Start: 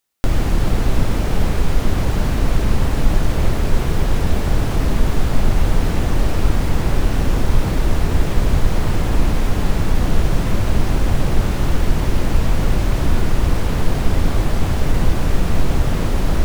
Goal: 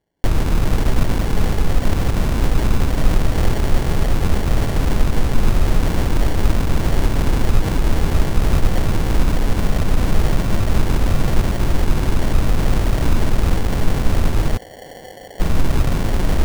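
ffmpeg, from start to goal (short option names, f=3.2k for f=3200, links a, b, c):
-filter_complex "[0:a]asettb=1/sr,asplit=3[a][b][c];[a]atrim=end=14.574[d];[b]atrim=start=14.57:end=15.4,asetpts=PTS-STARTPTS,afade=t=in:d=0.004:c=qsin,afade=t=out:st=0.826:d=0.004:c=qsin,asplit=3[e][f][g];[e]bandpass=f=530:t=q:w=8,volume=0dB[h];[f]bandpass=f=1.84k:t=q:w=8,volume=-6dB[i];[g]bandpass=f=2.48k:t=q:w=8,volume=-9dB[j];[h][i][j]amix=inputs=3:normalize=0[k];[c]atrim=start=15.396[l];[d][k]acrossfade=d=0.004:c1=hsin:c2=qsin[m];[m][l]acrossfade=d=0.004:c1=qsin:c2=hsin,acrusher=samples=35:mix=1:aa=0.000001"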